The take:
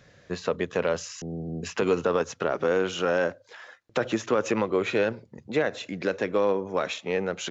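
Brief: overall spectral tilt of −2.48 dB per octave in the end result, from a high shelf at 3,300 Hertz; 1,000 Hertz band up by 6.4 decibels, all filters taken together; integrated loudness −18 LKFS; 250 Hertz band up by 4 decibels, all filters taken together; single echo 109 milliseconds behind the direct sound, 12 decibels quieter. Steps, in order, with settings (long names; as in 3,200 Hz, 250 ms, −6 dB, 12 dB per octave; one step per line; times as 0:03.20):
parametric band 250 Hz +5 dB
parametric band 1,000 Hz +9 dB
high-shelf EQ 3,300 Hz −8.5 dB
single-tap delay 109 ms −12 dB
level +6 dB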